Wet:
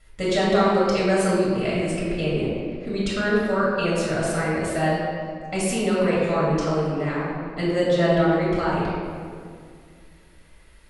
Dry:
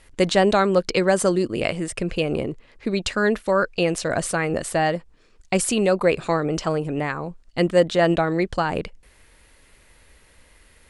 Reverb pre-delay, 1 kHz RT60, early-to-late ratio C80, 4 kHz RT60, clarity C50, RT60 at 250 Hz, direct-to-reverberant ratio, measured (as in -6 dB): 3 ms, 2.0 s, 0.0 dB, 1.3 s, -2.0 dB, 2.8 s, -8.5 dB